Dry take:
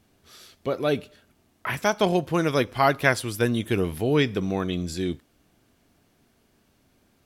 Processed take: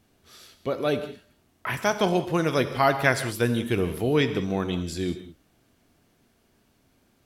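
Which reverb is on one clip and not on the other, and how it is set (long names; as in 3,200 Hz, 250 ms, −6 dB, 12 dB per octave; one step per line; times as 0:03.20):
reverb whose tail is shaped and stops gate 220 ms flat, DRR 9.5 dB
level −1 dB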